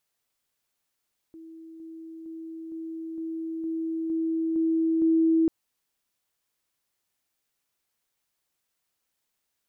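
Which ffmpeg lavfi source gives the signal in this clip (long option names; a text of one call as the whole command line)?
ffmpeg -f lavfi -i "aevalsrc='pow(10,(-42+3*floor(t/0.46))/20)*sin(2*PI*325*t)':duration=4.14:sample_rate=44100" out.wav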